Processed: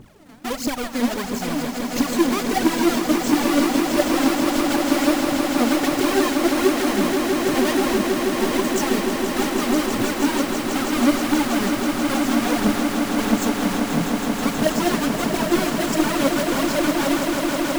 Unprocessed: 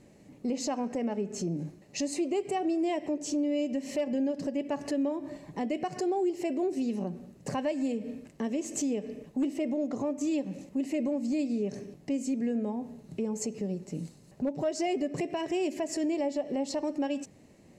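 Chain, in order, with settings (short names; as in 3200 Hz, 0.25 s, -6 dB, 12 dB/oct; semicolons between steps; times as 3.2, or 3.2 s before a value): half-waves squared off; phaser 1.5 Hz, delay 4.7 ms, feedback 75%; swelling echo 0.161 s, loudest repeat 8, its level -9 dB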